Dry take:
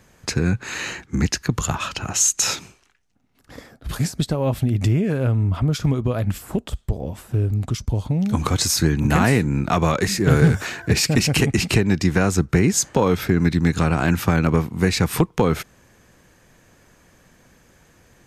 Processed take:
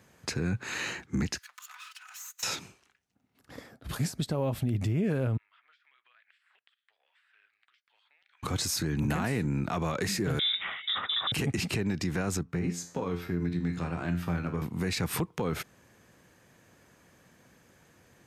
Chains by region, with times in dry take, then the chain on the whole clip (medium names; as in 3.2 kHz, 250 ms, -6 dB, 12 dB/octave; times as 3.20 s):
1.38–2.43 s: comb filter that takes the minimum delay 4 ms + inverse Chebyshev high-pass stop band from 360 Hz, stop band 60 dB + compression 2.5:1, threshold -43 dBFS
5.37–8.43 s: elliptic band-pass 1.7–8.9 kHz, stop band 80 dB + compression 10:1, threshold -48 dBFS + distance through air 460 m
10.39–11.32 s: frequency inversion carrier 3.7 kHz + bass shelf 410 Hz -7 dB
12.43–14.62 s: treble shelf 5.7 kHz -7.5 dB + feedback comb 87 Hz, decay 0.42 s, mix 80%
whole clip: high-pass 84 Hz 12 dB/octave; peaking EQ 6.5 kHz -2 dB; peak limiter -15.5 dBFS; trim -5.5 dB